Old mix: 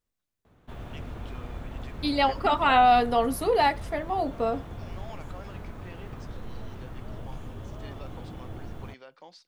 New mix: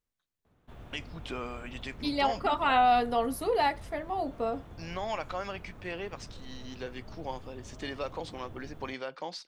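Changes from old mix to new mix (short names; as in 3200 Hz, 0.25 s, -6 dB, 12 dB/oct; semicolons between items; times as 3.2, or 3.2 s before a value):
first voice +11.0 dB; second voice -4.5 dB; background -8.0 dB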